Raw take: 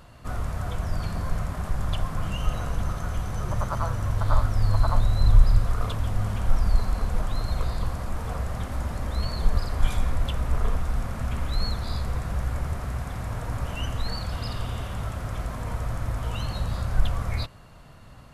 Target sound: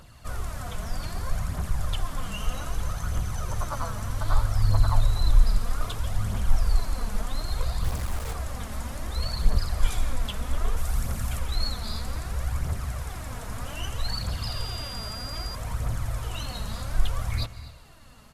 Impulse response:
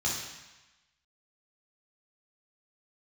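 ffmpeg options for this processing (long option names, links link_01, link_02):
-filter_complex "[0:a]asettb=1/sr,asplit=3[link_01][link_02][link_03];[link_01]atrim=end=10.774[link_04];[link_02]atrim=start=10.77:end=11.39,asetpts=PTS-STARTPTS,afade=type=in:duration=0.004:curve=qsin,afade=type=out:start_time=0.616:duration=0.004:curve=qsin,highshelf=frequency=6800:gain=9[link_05];[link_03]atrim=start=11.386[link_06];[link_04][link_05]acrossfade=duration=0.004:curve1=hsin:curve2=qsin[link_07];[link_07][link_06]acrossfade=duration=0.004:curve1=qsin:curve2=hsin,aphaser=in_gain=1:out_gain=1:delay=4.9:decay=0.48:speed=0.63:type=triangular,highshelf=frequency=2900:gain=9.5,aecho=1:1:247:0.133,asettb=1/sr,asplit=3[link_08][link_09][link_10];[link_08]atrim=end=7.844[link_11];[link_09]atrim=start=7.84:end=8.33,asetpts=PTS-STARTPTS,afade=type=in:duration=0.004:curve=qsin,afade=type=out:start_time=0.486:duration=0.004:curve=qsin,acrusher=bits=4:mix=0:aa=0.5[link_12];[link_10]atrim=start=8.326[link_13];[link_11][link_12]acrossfade=duration=0.004:curve1=hsin:curve2=qsin[link_14];[link_14][link_13]acrossfade=duration=0.004:curve1=qsin:curve2=hsin,asplit=2[link_15][link_16];[1:a]atrim=start_sample=2205,adelay=137[link_17];[link_16][link_17]afir=irnorm=-1:irlink=0,volume=-25dB[link_18];[link_15][link_18]amix=inputs=2:normalize=0,asettb=1/sr,asplit=3[link_19][link_20][link_21];[link_19]atrim=end=14.474[link_22];[link_20]atrim=start=14.47:end=15.55,asetpts=PTS-STARTPTS,afade=type=in:duration=0.004:curve=qsin,afade=type=out:start_time=1.076:duration=0.004:curve=qsin,aeval=exprs='val(0)+0.0251*sin(2*PI*4800*n/s)':channel_layout=same[link_23];[link_21]atrim=start=15.546[link_24];[link_22][link_23]acrossfade=duration=0.004:curve1=hsin:curve2=qsin[link_25];[link_25][link_24]acrossfade=duration=0.004:curve1=qsin:curve2=hsin,volume=-5dB"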